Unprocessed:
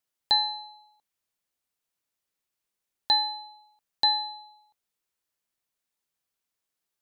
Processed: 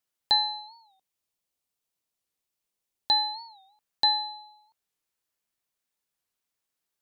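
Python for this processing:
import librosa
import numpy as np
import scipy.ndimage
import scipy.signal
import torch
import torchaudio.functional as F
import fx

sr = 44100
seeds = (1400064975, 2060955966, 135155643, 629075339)

y = fx.peak_eq(x, sr, hz=1600.0, db=-4.5, octaves=1.1, at=(0.59, 3.15), fade=0.02)
y = fx.record_warp(y, sr, rpm=45.0, depth_cents=160.0)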